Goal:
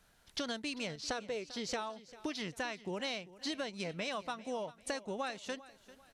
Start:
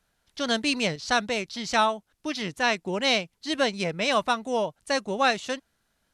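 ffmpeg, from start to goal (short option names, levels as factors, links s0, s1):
-filter_complex "[0:a]asettb=1/sr,asplit=3[s0][s1][s2];[s0]atrim=end=1.034[s3];[s1]atrim=start=1.03:end=1.81,asetpts=PTS-STARTPTS,afade=t=in:d=0.004:c=qsin,afade=t=out:st=0.776:d=0.004:c=qsin,equalizer=f=440:t=o:w=0.51:g=12[s4];[s2]atrim=start=1.806[s5];[s3][s4]acrossfade=d=0.004:c1=hsin:c2=qsin[s6];[s6][s5]acrossfade=d=0.004:c1=qsin:c2=hsin,acompressor=threshold=0.01:ratio=16,aecho=1:1:395|790|1185:0.126|0.0478|0.0182,volume=1.68"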